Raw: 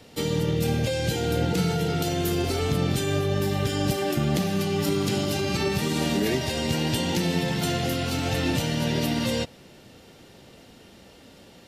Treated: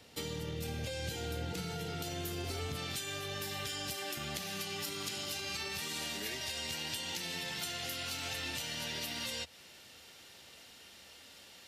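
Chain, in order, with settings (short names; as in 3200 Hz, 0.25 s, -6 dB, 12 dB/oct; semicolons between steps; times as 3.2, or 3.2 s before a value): tilt shelf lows -4 dB, about 760 Hz, from 2.75 s lows -10 dB; compressor, threshold -28 dBFS, peak gain reduction 10 dB; bell 78 Hz +8.5 dB 0.44 oct; gain -8.5 dB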